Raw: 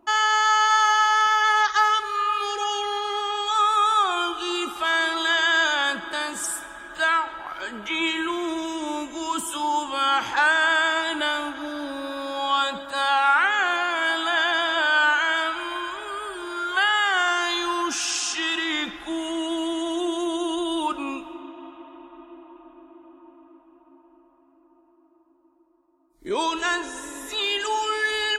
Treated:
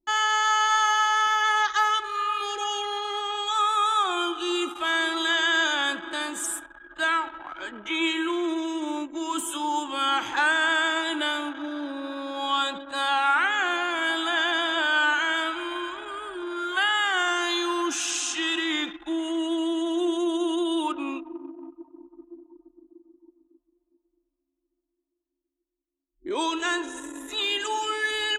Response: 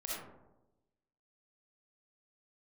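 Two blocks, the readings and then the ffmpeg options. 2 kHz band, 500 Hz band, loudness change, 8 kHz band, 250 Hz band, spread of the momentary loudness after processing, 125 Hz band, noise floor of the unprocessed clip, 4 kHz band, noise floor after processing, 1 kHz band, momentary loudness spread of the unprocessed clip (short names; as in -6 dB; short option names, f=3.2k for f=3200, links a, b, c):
-3.0 dB, -1.5 dB, -2.5 dB, -1.0 dB, +1.5 dB, 12 LU, n/a, -59 dBFS, -1.5 dB, -82 dBFS, -3.5 dB, 13 LU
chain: -filter_complex "[0:a]anlmdn=2.51,superequalizer=6b=2.24:14b=0.501,acrossover=split=270|1300|2800[a][b][c][d];[a]acompressor=threshold=-42dB:ratio=12[e];[e][b][c][d]amix=inputs=4:normalize=0,adynamicequalizer=threshold=0.0251:dfrequency=2300:dqfactor=0.7:tfrequency=2300:tqfactor=0.7:attack=5:release=100:ratio=0.375:range=1.5:mode=boostabove:tftype=highshelf,volume=-3.5dB"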